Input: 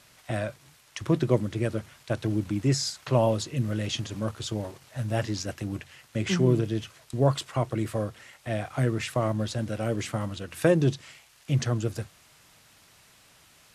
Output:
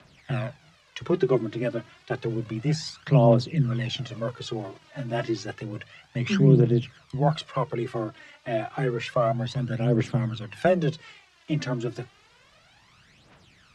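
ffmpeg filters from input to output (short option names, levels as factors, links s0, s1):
-af "afreqshift=19,aphaser=in_gain=1:out_gain=1:delay=3.5:decay=0.63:speed=0.3:type=triangular,lowpass=4100"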